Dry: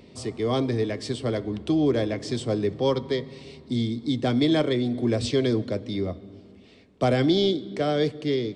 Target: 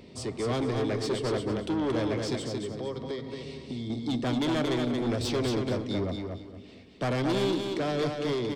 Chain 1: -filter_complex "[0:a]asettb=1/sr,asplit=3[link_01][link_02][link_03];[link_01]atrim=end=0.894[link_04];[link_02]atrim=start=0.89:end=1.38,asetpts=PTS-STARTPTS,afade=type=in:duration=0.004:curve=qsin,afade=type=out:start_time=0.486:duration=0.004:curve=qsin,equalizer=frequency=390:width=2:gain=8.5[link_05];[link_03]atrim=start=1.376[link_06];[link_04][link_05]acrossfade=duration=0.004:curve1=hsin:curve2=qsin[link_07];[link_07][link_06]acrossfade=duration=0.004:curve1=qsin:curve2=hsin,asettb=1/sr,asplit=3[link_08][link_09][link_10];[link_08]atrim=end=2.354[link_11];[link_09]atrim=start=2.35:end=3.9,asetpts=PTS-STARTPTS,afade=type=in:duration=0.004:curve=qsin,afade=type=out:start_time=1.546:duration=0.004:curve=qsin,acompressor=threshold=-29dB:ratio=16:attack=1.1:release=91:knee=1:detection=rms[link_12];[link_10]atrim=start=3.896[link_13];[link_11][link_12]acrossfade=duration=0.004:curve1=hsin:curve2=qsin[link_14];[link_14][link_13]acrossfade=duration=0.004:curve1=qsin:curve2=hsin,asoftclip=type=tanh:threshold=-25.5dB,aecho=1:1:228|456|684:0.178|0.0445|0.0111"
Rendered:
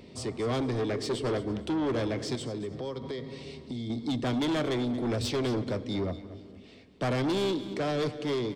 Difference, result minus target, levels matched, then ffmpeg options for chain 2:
echo-to-direct −10.5 dB
-filter_complex "[0:a]asettb=1/sr,asplit=3[link_01][link_02][link_03];[link_01]atrim=end=0.894[link_04];[link_02]atrim=start=0.89:end=1.38,asetpts=PTS-STARTPTS,afade=type=in:duration=0.004:curve=qsin,afade=type=out:start_time=0.486:duration=0.004:curve=qsin,equalizer=frequency=390:width=2:gain=8.5[link_05];[link_03]atrim=start=1.376[link_06];[link_04][link_05]acrossfade=duration=0.004:curve1=hsin:curve2=qsin[link_07];[link_07][link_06]acrossfade=duration=0.004:curve1=qsin:curve2=hsin,asettb=1/sr,asplit=3[link_08][link_09][link_10];[link_08]atrim=end=2.354[link_11];[link_09]atrim=start=2.35:end=3.9,asetpts=PTS-STARTPTS,afade=type=in:duration=0.004:curve=qsin,afade=type=out:start_time=1.546:duration=0.004:curve=qsin,acompressor=threshold=-29dB:ratio=16:attack=1.1:release=91:knee=1:detection=rms[link_12];[link_10]atrim=start=3.896[link_13];[link_11][link_12]acrossfade=duration=0.004:curve1=hsin:curve2=qsin[link_14];[link_14][link_13]acrossfade=duration=0.004:curve1=qsin:curve2=hsin,asoftclip=type=tanh:threshold=-25.5dB,aecho=1:1:228|456|684:0.596|0.149|0.0372"

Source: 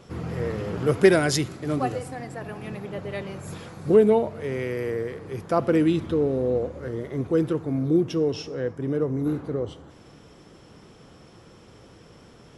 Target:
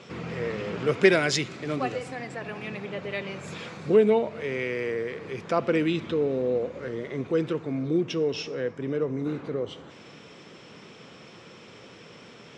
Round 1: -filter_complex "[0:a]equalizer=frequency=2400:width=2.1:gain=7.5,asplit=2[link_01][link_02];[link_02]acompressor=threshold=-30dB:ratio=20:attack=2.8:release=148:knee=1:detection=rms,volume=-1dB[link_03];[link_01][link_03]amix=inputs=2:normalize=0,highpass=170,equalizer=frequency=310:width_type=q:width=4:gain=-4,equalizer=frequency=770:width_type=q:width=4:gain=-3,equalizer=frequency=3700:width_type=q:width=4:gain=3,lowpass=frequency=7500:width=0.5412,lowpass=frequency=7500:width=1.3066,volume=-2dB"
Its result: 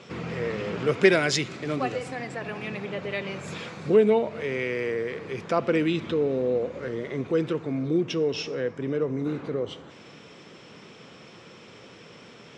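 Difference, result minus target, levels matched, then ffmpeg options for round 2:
downward compressor: peak gain reduction −5.5 dB
-filter_complex "[0:a]equalizer=frequency=2400:width=2.1:gain=7.5,asplit=2[link_01][link_02];[link_02]acompressor=threshold=-36dB:ratio=20:attack=2.8:release=148:knee=1:detection=rms,volume=-1dB[link_03];[link_01][link_03]amix=inputs=2:normalize=0,highpass=170,equalizer=frequency=310:width_type=q:width=4:gain=-4,equalizer=frequency=770:width_type=q:width=4:gain=-3,equalizer=frequency=3700:width_type=q:width=4:gain=3,lowpass=frequency=7500:width=0.5412,lowpass=frequency=7500:width=1.3066,volume=-2dB"

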